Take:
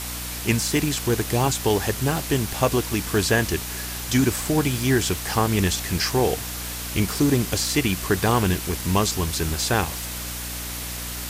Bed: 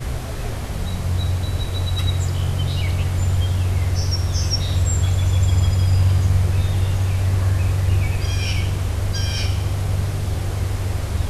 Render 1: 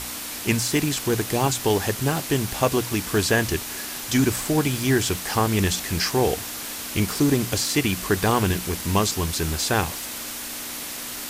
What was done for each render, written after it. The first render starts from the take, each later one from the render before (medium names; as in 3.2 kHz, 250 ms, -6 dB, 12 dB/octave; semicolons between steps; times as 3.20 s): hum notches 60/120/180 Hz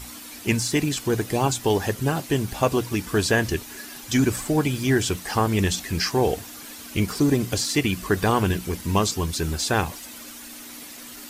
noise reduction 10 dB, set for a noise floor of -33 dBFS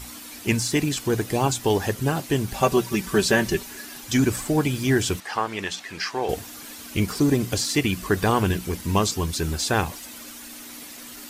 2.53–3.70 s: comb 5.2 ms; 5.20–6.29 s: band-pass filter 1.6 kHz, Q 0.53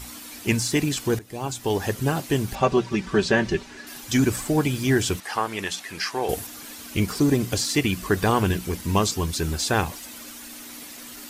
1.19–1.96 s: fade in, from -19.5 dB; 2.55–3.87 s: distance through air 110 m; 5.23–6.47 s: peaking EQ 11 kHz +9 dB 0.75 oct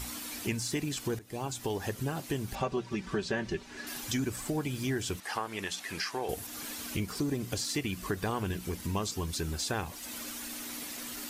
compression 2.5:1, threshold -35 dBFS, peak gain reduction 13.5 dB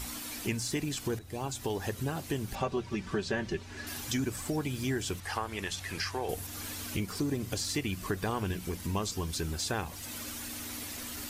add bed -30.5 dB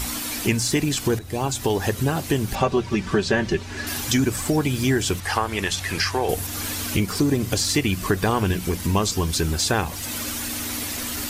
trim +11.5 dB